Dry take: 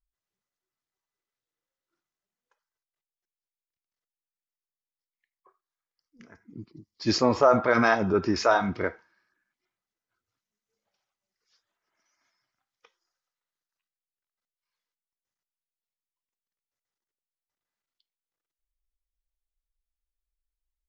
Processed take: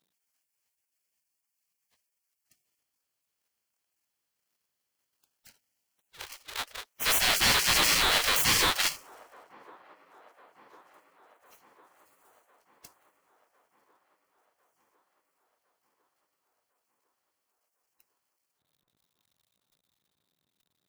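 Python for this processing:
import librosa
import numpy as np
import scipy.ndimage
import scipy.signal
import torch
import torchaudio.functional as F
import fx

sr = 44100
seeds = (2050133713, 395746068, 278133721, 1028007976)

p1 = fx.halfwave_hold(x, sr)
p2 = fx.peak_eq(p1, sr, hz=3700.0, db=14.0, octaves=0.24)
p3 = fx.over_compress(p2, sr, threshold_db=-23.0, ratio=-1.0)
p4 = p2 + (p3 * librosa.db_to_amplitude(2.5))
p5 = fx.spec_gate(p4, sr, threshold_db=-20, keep='weak')
p6 = 10.0 ** (-19.5 / 20.0) * np.tanh(p5 / 10.0 ** (-19.5 / 20.0))
p7 = p6 + fx.echo_wet_bandpass(p6, sr, ms=1053, feedback_pct=62, hz=600.0, wet_db=-20.5, dry=0)
y = p7 * librosa.db_to_amplitude(2.5)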